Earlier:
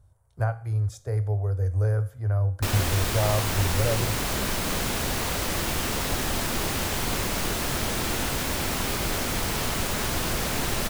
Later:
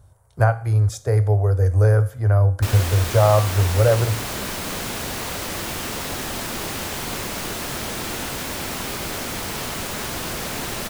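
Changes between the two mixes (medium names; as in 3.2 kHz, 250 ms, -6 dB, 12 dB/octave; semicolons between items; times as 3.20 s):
speech +11.0 dB; master: add bass shelf 71 Hz -10 dB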